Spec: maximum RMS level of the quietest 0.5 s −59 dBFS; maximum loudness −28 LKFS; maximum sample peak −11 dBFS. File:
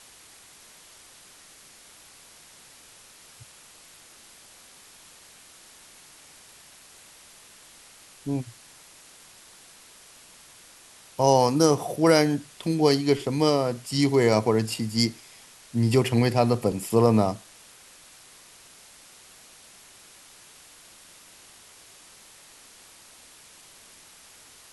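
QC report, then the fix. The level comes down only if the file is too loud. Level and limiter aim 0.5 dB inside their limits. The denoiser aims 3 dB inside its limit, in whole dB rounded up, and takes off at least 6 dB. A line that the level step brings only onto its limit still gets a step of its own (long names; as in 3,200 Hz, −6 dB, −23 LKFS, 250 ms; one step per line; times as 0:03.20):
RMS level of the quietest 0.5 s −51 dBFS: out of spec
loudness −23.0 LKFS: out of spec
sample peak −5.0 dBFS: out of spec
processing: broadband denoise 6 dB, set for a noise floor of −51 dBFS
level −5.5 dB
brickwall limiter −11.5 dBFS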